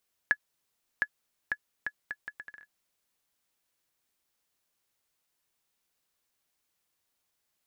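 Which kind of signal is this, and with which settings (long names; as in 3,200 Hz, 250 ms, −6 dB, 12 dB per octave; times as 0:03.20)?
bouncing ball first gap 0.71 s, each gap 0.7, 1,700 Hz, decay 58 ms −12 dBFS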